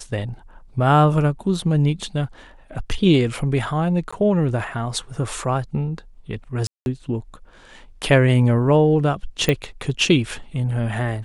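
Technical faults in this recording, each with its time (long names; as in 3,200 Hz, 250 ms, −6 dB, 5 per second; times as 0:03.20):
0:04.11–0:04.12: drop-out 15 ms
0:06.67–0:06.86: drop-out 191 ms
0:09.49: click −6 dBFS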